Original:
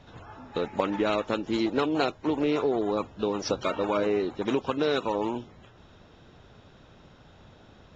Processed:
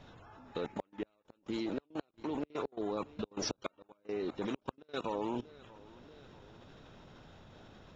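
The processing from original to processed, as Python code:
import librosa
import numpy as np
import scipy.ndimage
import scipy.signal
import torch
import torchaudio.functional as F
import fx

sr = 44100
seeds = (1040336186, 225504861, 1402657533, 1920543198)

y = fx.low_shelf(x, sr, hz=130.0, db=2.0)
y = fx.echo_feedback(y, sr, ms=636, feedback_pct=40, wet_db=-22.0)
y = fx.gate_flip(y, sr, shuts_db=-15.0, range_db=-39)
y = fx.level_steps(y, sr, step_db=19)
y = fx.peak_eq(y, sr, hz=64.0, db=-4.5, octaves=1.1)
y = F.gain(torch.from_numpy(y), 2.5).numpy()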